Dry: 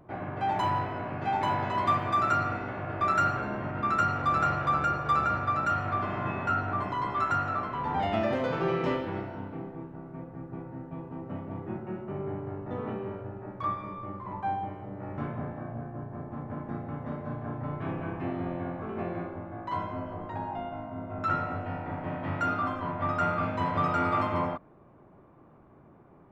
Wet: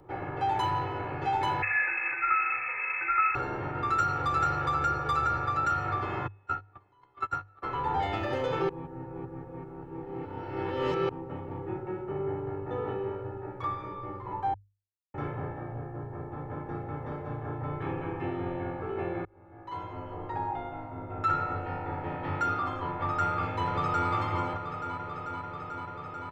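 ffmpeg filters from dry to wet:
-filter_complex "[0:a]asettb=1/sr,asplit=3[a][b][c];[a]atrim=end=1.624[d];[b]atrim=start=1.62:end=3.35,asetpts=PTS-STARTPTS,afade=t=in:d=0.004:c=qsin,afade=t=out:st=1.726:d=0.004:c=qsin,lowpass=f=2.3k:t=q:w=0.5098,lowpass=f=2.3k:t=q:w=0.6013,lowpass=f=2.3k:t=q:w=0.9,lowpass=f=2.3k:t=q:w=2.563,afreqshift=-2700[e];[c]atrim=start=3.346[f];[d][e]acrossfade=d=0.004:c1=hsin:c2=qsin[g];[g][f]acrossfade=d=0.004:c1=qsin:c2=hsin,asplit=3[h][i][j];[h]afade=t=out:st=6.26:d=0.02[k];[i]agate=range=-34dB:threshold=-26dB:ratio=16:release=100:detection=peak,afade=t=in:st=6.26:d=0.02,afade=t=out:st=7.62:d=0.02[l];[j]afade=t=in:st=7.62:d=0.02[m];[k][l][m]amix=inputs=3:normalize=0,asplit=2[n][o];[o]afade=t=in:st=23.23:d=0.01,afade=t=out:st=24.09:d=0.01,aecho=0:1:440|880|1320|1760|2200|2640|3080|3520|3960|4400|4840|5280:0.316228|0.268794|0.228475|0.194203|0.165073|0.140312|0.119265|0.101375|0.0861691|0.0732437|0.0622572|0.0529186[p];[n][p]amix=inputs=2:normalize=0,asplit=6[q][r][s][t][u][v];[q]atrim=end=8.692[w];[r]atrim=start=8.688:end=11.092,asetpts=PTS-STARTPTS,areverse[x];[s]atrim=start=11.088:end=14.54,asetpts=PTS-STARTPTS,afade=t=out:st=3.448:d=0.004:c=hsin[y];[t]atrim=start=14.54:end=15.14,asetpts=PTS-STARTPTS,volume=0[z];[u]atrim=start=15.14:end=19.25,asetpts=PTS-STARTPTS,afade=t=in:d=0.004:c=hsin,afade=t=out:st=4.106:d=0.004:c=hsin[aa];[v]atrim=start=19.25,asetpts=PTS-STARTPTS,afade=t=in:d=1.07[ab];[w][x]acrossfade=d=0.004:c1=hsin:c2=hsin[ac];[y][z][aa][ab]concat=n=4:v=0:a=1[ad];[ac][ad]acrossfade=d=0.004:c1=hsin:c2=hsin,acrossover=split=150|3000[ae][af][ag];[af]acompressor=threshold=-30dB:ratio=2[ah];[ae][ah][ag]amix=inputs=3:normalize=0,bandreject=f=50:t=h:w=6,bandreject=f=100:t=h:w=6,aecho=1:1:2.3:0.76"

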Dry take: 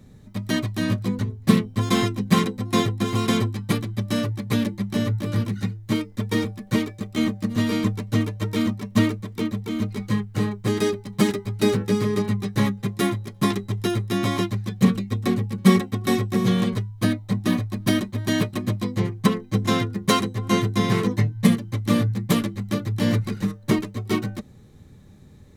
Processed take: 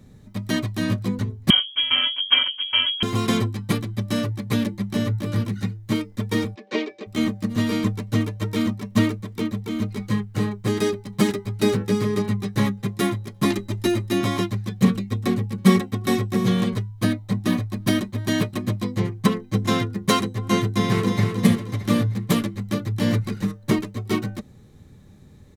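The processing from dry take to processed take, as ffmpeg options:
-filter_complex "[0:a]asettb=1/sr,asplit=3[a][b][c];[a]atrim=end=1.504[d];[b]atrim=start=1.5:end=3.03,asetpts=PTS-STARTPTS,afade=t=in:d=0.004:c=qsin,afade=t=out:st=1.526:d=0.004:c=qsin,lowpass=f=2.9k:t=q:w=0.5098,lowpass=f=2.9k:t=q:w=0.6013,lowpass=f=2.9k:t=q:w=0.9,lowpass=f=2.9k:t=q:w=2.563,afreqshift=-3400[e];[c]atrim=start=3.026[f];[d][e]acrossfade=d=0.004:c1=hsin:c2=qsin[g];[g][f]acrossfade=d=0.004:c1=qsin:c2=hsin,asplit=3[h][i][j];[h]afade=t=out:st=6.54:d=0.02[k];[i]highpass=f=300:w=0.5412,highpass=f=300:w=1.3066,equalizer=f=400:t=q:w=4:g=6,equalizer=f=610:t=q:w=4:g=3,equalizer=f=1.3k:t=q:w=4:g=-5,equalizer=f=2.5k:t=q:w=4:g=5,lowpass=f=5.4k:w=0.5412,lowpass=f=5.4k:w=1.3066,afade=t=in:st=6.54:d=0.02,afade=t=out:st=7.06:d=0.02[l];[j]afade=t=in:st=7.06:d=0.02[m];[k][l][m]amix=inputs=3:normalize=0,asettb=1/sr,asplit=3[n][o][p];[n]atrim=end=13.454[q];[o]atrim=start=13.45:end=14.21,asetpts=PTS-STARTPTS,afade=t=in:d=0.004:c=qsin,afade=t=out:st=0.756:d=0.004:c=qsin,aecho=1:1:3.3:0.82,atrim=end_sample=33516[r];[p]atrim=start=14.206[s];[q][r]acrossfade=d=0.004:c1=hsin:c2=qsin[t];[t][s]acrossfade=d=0.004:c1=qsin:c2=hsin,asplit=2[u][v];[v]afade=t=in:st=20.66:d=0.01,afade=t=out:st=21.21:d=0.01,aecho=0:1:310|620|930|1240|1550:0.530884|0.212354|0.0849415|0.0339766|0.0135906[w];[u][w]amix=inputs=2:normalize=0"

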